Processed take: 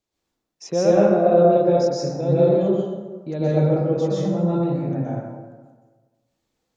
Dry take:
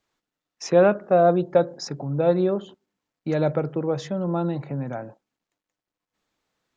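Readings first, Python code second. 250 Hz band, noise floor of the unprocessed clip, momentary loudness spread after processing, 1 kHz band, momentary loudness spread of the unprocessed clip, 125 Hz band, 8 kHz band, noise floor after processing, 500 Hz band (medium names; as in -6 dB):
+4.5 dB, under -85 dBFS, 13 LU, +1.0 dB, 14 LU, +5.5 dB, no reading, -80 dBFS, +3.5 dB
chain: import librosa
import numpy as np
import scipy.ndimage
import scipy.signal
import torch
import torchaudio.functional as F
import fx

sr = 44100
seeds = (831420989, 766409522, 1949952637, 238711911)

y = fx.peak_eq(x, sr, hz=1500.0, db=-10.0, octaves=1.8)
y = fx.rev_plate(y, sr, seeds[0], rt60_s=1.4, hf_ratio=0.5, predelay_ms=110, drr_db=-8.5)
y = F.gain(torch.from_numpy(y), -3.5).numpy()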